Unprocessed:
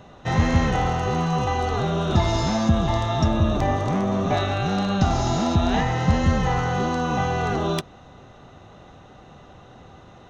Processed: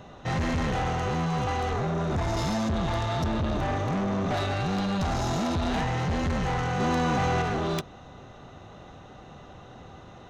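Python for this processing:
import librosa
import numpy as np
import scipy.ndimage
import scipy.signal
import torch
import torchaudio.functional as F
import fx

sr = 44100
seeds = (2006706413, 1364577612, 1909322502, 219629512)

y = fx.tracing_dist(x, sr, depth_ms=0.028)
y = fx.peak_eq(y, sr, hz=3200.0, db=-9.5, octaves=0.94, at=(1.73, 2.37))
y = 10.0 ** (-24.0 / 20.0) * np.tanh(y / 10.0 ** (-24.0 / 20.0))
y = fx.env_flatten(y, sr, amount_pct=100, at=(6.79, 7.41), fade=0.02)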